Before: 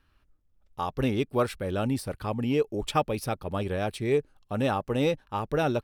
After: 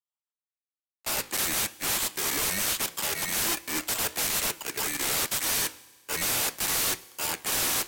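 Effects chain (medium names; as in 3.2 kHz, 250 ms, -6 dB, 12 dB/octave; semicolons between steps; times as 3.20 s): bit-reversed sample order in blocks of 16 samples; high-pass 1.3 kHz 12 dB/octave; in parallel at +2.5 dB: peak limiter -23 dBFS, peak gain reduction 11.5 dB; on the sum: waveshaping leveller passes 5; rotary cabinet horn 7.5 Hz, later 1.1 Hz, at 2.37 s; integer overflow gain 17 dB; flange 1.5 Hz, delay 6.4 ms, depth 9 ms, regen -78%; speed mistake 45 rpm record played at 33 rpm; on a send at -19.5 dB: reverberation RT60 3.1 s, pre-delay 3 ms; on the sum: three bands expanded up and down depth 40%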